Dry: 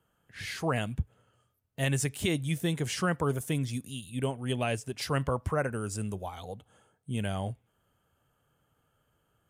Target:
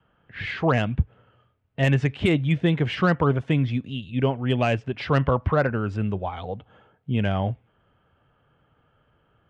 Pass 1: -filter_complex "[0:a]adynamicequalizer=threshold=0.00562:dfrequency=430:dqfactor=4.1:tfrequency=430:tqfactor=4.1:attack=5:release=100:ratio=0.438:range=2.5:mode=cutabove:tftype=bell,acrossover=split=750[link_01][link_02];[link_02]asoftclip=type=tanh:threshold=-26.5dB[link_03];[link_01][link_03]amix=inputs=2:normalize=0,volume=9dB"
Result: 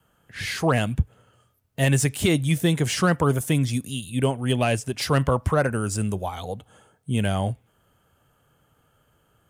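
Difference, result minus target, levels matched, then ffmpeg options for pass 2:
4,000 Hz band +4.0 dB
-filter_complex "[0:a]adynamicequalizer=threshold=0.00562:dfrequency=430:dqfactor=4.1:tfrequency=430:tqfactor=4.1:attack=5:release=100:ratio=0.438:range=2.5:mode=cutabove:tftype=bell,lowpass=frequency=3100:width=0.5412,lowpass=frequency=3100:width=1.3066,acrossover=split=750[link_01][link_02];[link_02]asoftclip=type=tanh:threshold=-26.5dB[link_03];[link_01][link_03]amix=inputs=2:normalize=0,volume=9dB"

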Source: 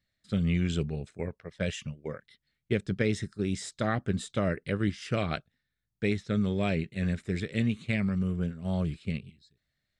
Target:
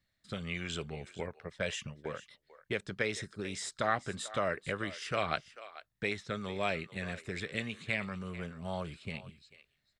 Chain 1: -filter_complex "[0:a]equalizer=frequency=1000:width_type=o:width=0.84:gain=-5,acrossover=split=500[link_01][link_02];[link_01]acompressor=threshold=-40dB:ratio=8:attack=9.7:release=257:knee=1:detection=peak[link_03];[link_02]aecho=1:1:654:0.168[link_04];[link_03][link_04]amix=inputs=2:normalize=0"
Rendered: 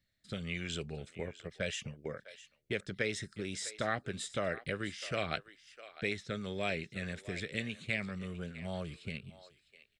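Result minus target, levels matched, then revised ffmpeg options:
echo 212 ms late; 1,000 Hz band −4.5 dB
-filter_complex "[0:a]equalizer=frequency=1000:width_type=o:width=0.84:gain=4.5,acrossover=split=500[link_01][link_02];[link_01]acompressor=threshold=-40dB:ratio=8:attack=9.7:release=257:knee=1:detection=peak[link_03];[link_02]aecho=1:1:442:0.168[link_04];[link_03][link_04]amix=inputs=2:normalize=0"

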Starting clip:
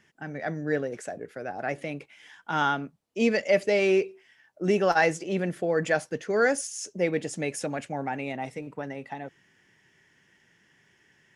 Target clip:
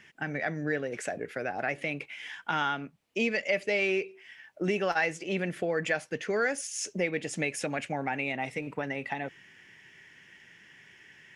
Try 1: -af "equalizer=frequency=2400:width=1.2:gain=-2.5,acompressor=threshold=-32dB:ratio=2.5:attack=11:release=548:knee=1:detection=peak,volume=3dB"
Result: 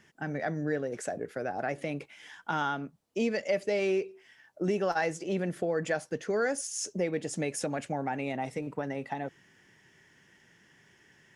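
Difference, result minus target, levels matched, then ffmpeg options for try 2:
2,000 Hz band −5.0 dB
-af "equalizer=frequency=2400:width=1.2:gain=9,acompressor=threshold=-32dB:ratio=2.5:attack=11:release=548:knee=1:detection=peak,volume=3dB"

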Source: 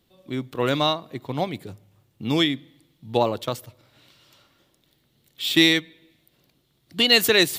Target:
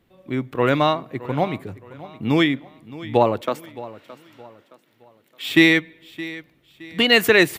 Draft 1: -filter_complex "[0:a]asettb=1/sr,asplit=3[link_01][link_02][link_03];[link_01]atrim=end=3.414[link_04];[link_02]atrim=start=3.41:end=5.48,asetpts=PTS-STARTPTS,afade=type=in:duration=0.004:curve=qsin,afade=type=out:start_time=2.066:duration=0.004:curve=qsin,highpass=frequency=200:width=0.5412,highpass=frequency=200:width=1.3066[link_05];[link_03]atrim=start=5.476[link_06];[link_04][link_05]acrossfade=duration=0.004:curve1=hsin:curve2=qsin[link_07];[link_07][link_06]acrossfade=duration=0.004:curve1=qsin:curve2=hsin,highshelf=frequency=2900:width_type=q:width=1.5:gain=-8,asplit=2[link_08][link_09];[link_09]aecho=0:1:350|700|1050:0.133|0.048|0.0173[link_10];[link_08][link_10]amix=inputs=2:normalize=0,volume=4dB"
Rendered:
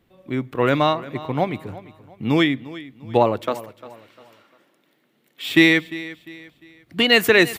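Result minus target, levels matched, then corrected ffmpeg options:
echo 268 ms early
-filter_complex "[0:a]asettb=1/sr,asplit=3[link_01][link_02][link_03];[link_01]atrim=end=3.414[link_04];[link_02]atrim=start=3.41:end=5.48,asetpts=PTS-STARTPTS,afade=type=in:duration=0.004:curve=qsin,afade=type=out:start_time=2.066:duration=0.004:curve=qsin,highpass=frequency=200:width=0.5412,highpass=frequency=200:width=1.3066[link_05];[link_03]atrim=start=5.476[link_06];[link_04][link_05]acrossfade=duration=0.004:curve1=hsin:curve2=qsin[link_07];[link_07][link_06]acrossfade=duration=0.004:curve1=qsin:curve2=hsin,highshelf=frequency=2900:width_type=q:width=1.5:gain=-8,asplit=2[link_08][link_09];[link_09]aecho=0:1:618|1236|1854:0.133|0.048|0.0173[link_10];[link_08][link_10]amix=inputs=2:normalize=0,volume=4dB"

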